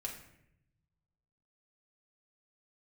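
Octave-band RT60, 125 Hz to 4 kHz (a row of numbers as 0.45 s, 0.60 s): 1.9 s, 1.3 s, 0.85 s, 0.70 s, 0.80 s, 0.55 s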